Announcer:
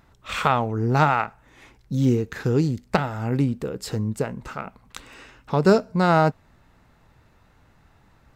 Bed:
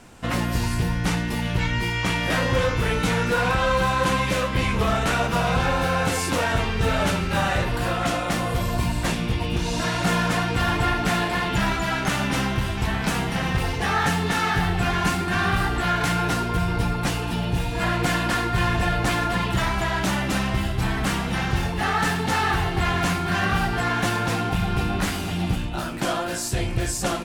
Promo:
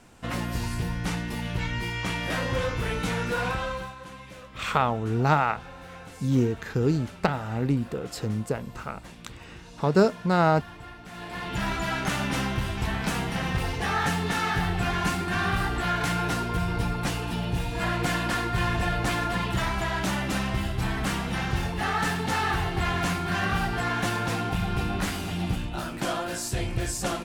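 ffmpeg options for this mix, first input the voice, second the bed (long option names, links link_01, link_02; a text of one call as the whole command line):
ffmpeg -i stem1.wav -i stem2.wav -filter_complex "[0:a]adelay=4300,volume=-3dB[link_01];[1:a]volume=11.5dB,afade=type=out:start_time=3.46:duration=0.49:silence=0.16788,afade=type=in:start_time=11.11:duration=0.71:silence=0.133352[link_02];[link_01][link_02]amix=inputs=2:normalize=0" out.wav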